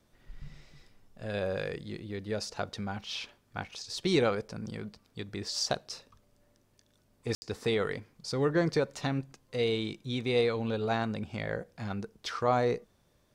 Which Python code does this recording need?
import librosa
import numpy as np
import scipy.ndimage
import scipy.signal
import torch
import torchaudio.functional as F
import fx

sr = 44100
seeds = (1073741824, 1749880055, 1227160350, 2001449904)

y = fx.fix_ambience(x, sr, seeds[0], print_start_s=12.83, print_end_s=13.33, start_s=7.35, end_s=7.42)